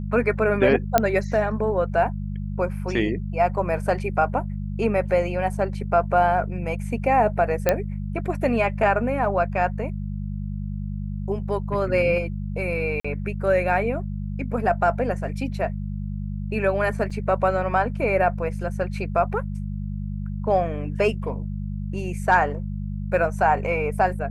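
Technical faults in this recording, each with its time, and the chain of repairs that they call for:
hum 50 Hz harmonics 4 -29 dBFS
0.98 s: pop -3 dBFS
7.69 s: pop -5 dBFS
13.00–13.04 s: dropout 45 ms
17.10–17.11 s: dropout 5.5 ms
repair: de-click; de-hum 50 Hz, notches 4; interpolate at 13.00 s, 45 ms; interpolate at 17.10 s, 5.5 ms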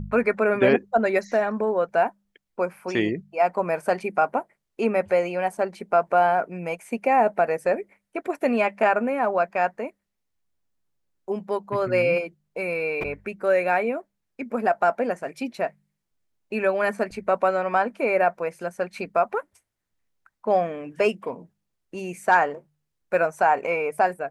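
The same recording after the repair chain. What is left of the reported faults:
nothing left

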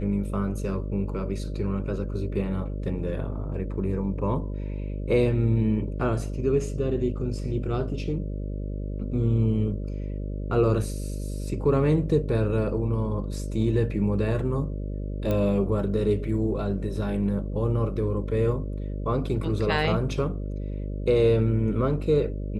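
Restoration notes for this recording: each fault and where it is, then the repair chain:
buzz 50 Hz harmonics 12 -31 dBFS
15.31 s: pop -15 dBFS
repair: de-click; de-hum 50 Hz, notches 12

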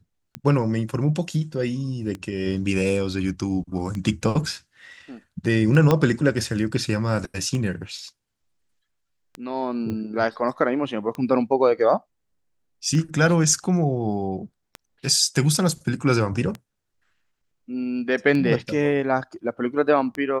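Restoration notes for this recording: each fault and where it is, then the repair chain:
tick 33 1/3 rpm -17 dBFS
5.91 s: pop -6 dBFS
9.90 s: pop -19 dBFS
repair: de-click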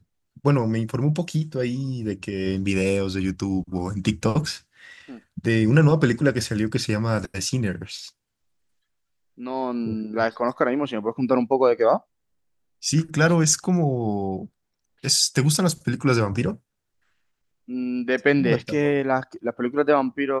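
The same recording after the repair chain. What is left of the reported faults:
5.91 s: pop
9.90 s: pop

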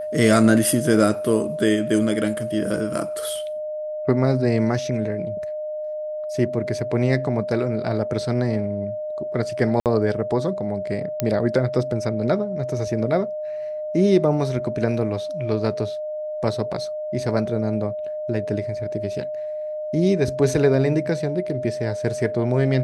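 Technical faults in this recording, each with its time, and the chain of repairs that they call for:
whine 610 Hz -26 dBFS
9.80–9.86 s: dropout 58 ms
11.20 s: pop -7 dBFS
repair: de-click; band-stop 610 Hz, Q 30; interpolate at 9.80 s, 58 ms

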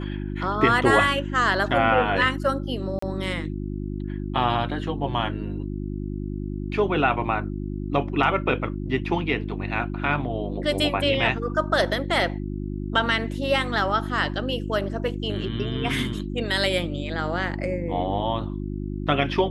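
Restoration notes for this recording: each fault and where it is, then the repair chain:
hum 50 Hz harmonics 7 -30 dBFS
2.99–3.02 s: dropout 34 ms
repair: de-hum 50 Hz, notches 7; interpolate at 2.99 s, 34 ms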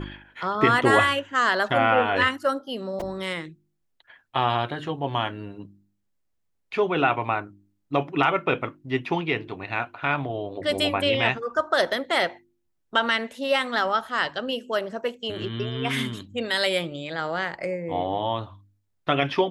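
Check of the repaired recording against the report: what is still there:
nothing left

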